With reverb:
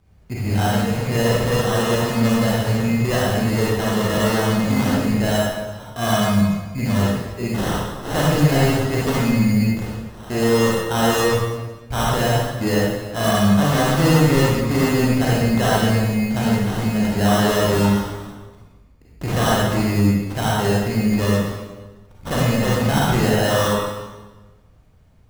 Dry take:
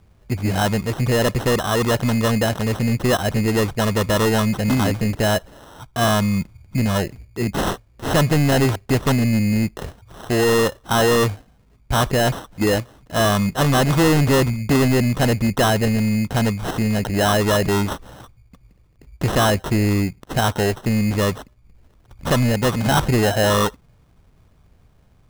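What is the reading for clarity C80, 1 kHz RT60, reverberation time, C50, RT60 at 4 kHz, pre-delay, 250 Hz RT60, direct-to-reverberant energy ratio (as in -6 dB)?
0.5 dB, 1.2 s, 1.2 s, -3.0 dB, 1.1 s, 34 ms, 1.4 s, -6.0 dB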